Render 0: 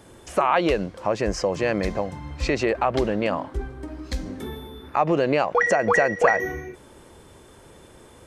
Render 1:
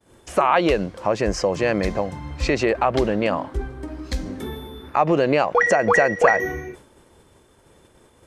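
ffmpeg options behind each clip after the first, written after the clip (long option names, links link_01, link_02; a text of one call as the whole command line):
ffmpeg -i in.wav -af "agate=range=-33dB:threshold=-41dB:ratio=3:detection=peak,volume=2.5dB" out.wav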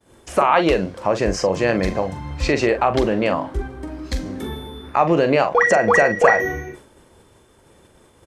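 ffmpeg -i in.wav -filter_complex "[0:a]asplit=2[link_01][link_02];[link_02]adelay=42,volume=-9.5dB[link_03];[link_01][link_03]amix=inputs=2:normalize=0,volume=1.5dB" out.wav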